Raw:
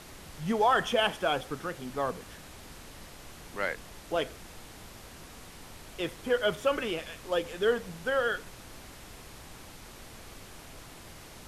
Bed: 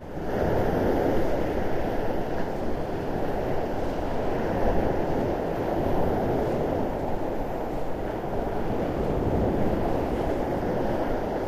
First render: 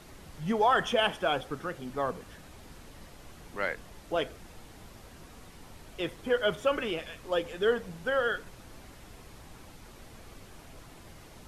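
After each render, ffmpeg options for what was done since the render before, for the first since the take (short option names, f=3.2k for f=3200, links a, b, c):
-af "afftdn=nr=6:nf=-49"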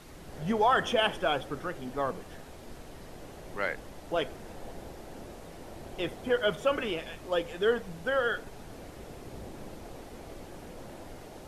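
-filter_complex "[1:a]volume=-20.5dB[a];[0:a][a]amix=inputs=2:normalize=0"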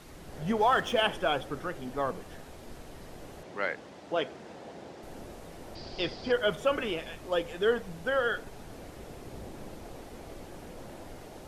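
-filter_complex "[0:a]asettb=1/sr,asplit=3[a][b][c];[a]atrim=end=0.574[d];[b]atrim=start=0.57:end=1.02,asetpts=PTS-STARTPTS,afade=t=in:d=0.004:c=qsin,afade=t=out:st=0.446:d=0.004:c=qsin,aeval=exprs='sgn(val(0))*max(abs(val(0))-0.00422,0)':c=same[e];[c]atrim=start=1.016[f];[d][e]acrossfade=d=0.004:c1=hsin:c2=qsin[g];[g][f]acrossfade=d=0.004:c1=qsin:c2=hsin,asettb=1/sr,asplit=3[h][i][j];[h]atrim=end=3.434[k];[i]atrim=start=3.43:end=5.03,asetpts=PTS-STARTPTS,afade=t=in:d=0.004:c=qsin,afade=t=out:st=1.596:d=0.004:c=qsin,highpass=150,lowpass=6.3k[l];[j]atrim=start=5.026[m];[k][l]acrossfade=d=0.004:c1=hsin:c2=qsin[n];[n][m]acrossfade=d=0.004:c1=qsin:c2=hsin,asettb=1/sr,asplit=3[o][p][q];[o]atrim=end=5.754[r];[p]atrim=start=5.75:end=6.32,asetpts=PTS-STARTPTS,afade=t=in:d=0.004:c=qsin,afade=t=out:st=0.566:d=0.004:c=qsin,lowpass=f=4.8k:t=q:w=11[s];[q]atrim=start=6.316[t];[r][s]acrossfade=d=0.004:c1=hsin:c2=qsin[u];[u][t]acrossfade=d=0.004:c1=qsin:c2=hsin"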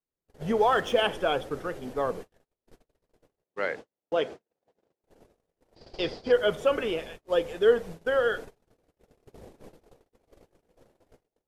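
-af "agate=range=-48dB:threshold=-40dB:ratio=16:detection=peak,equalizer=f=460:w=2.4:g=6.5"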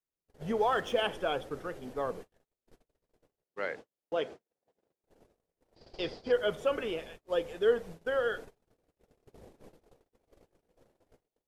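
-af "volume=-5.5dB"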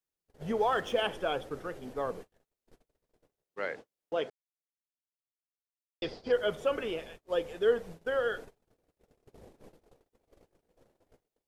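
-filter_complex "[0:a]asplit=3[a][b][c];[a]atrim=end=4.3,asetpts=PTS-STARTPTS,afade=t=out:st=4.296:d=0.004:c=hsin[d];[b]atrim=start=4.3:end=6.02,asetpts=PTS-STARTPTS,volume=0[e];[c]atrim=start=6.02,asetpts=PTS-STARTPTS,afade=t=in:d=0.004:c=hsin[f];[d][e][f]concat=n=3:v=0:a=1"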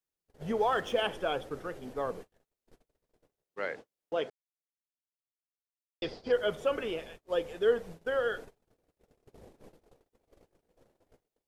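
-af anull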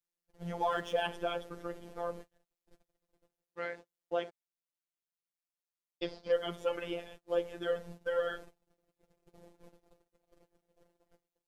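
-af "afftfilt=real='hypot(re,im)*cos(PI*b)':imag='0':win_size=1024:overlap=0.75"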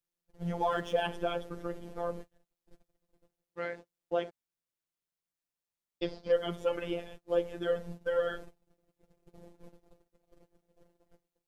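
-af "lowshelf=f=390:g=7"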